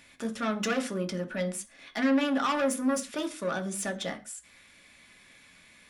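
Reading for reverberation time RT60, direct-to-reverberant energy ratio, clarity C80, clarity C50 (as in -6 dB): no single decay rate, 5.0 dB, 21.0 dB, 17.0 dB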